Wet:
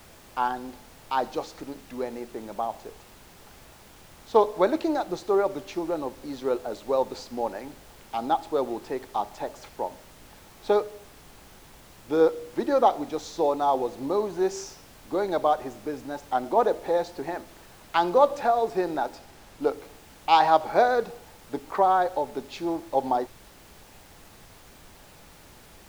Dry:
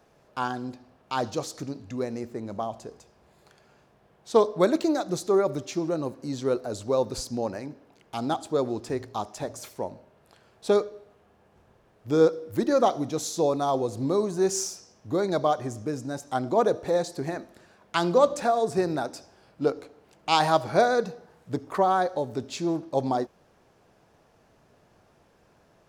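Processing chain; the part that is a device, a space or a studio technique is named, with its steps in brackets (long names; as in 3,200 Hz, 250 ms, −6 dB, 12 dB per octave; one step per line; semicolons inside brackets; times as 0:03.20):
horn gramophone (band-pass filter 290–3,800 Hz; parametric band 850 Hz +9 dB 0.22 octaves; tape wow and flutter 23 cents; pink noise bed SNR 23 dB)
0:19.15–0:19.62: high-shelf EQ 11,000 Hz −5.5 dB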